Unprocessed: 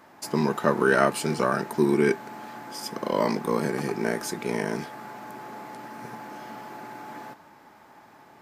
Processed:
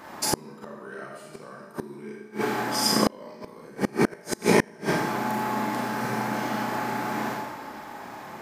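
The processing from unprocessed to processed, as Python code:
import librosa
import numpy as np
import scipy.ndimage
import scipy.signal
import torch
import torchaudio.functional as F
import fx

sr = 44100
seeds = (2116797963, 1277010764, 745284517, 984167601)

y = fx.rev_schroeder(x, sr, rt60_s=1.0, comb_ms=29, drr_db=-3.0)
y = fx.gate_flip(y, sr, shuts_db=-14.0, range_db=-31)
y = y * librosa.db_to_amplitude(8.0)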